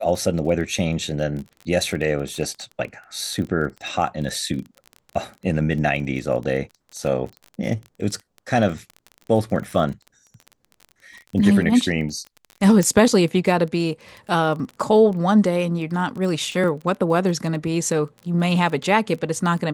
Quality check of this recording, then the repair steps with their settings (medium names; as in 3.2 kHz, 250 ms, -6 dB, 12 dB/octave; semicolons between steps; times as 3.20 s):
crackle 21 per s -29 dBFS
12.83 s: pop -9 dBFS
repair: de-click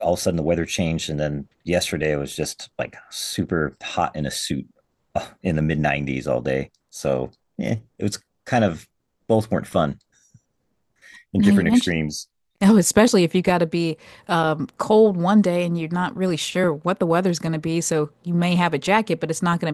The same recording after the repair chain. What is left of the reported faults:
12.83 s: pop